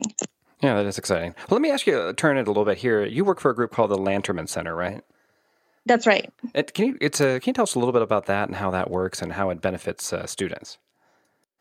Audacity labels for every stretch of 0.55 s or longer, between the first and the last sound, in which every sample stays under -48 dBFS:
5.110000	5.860000	silence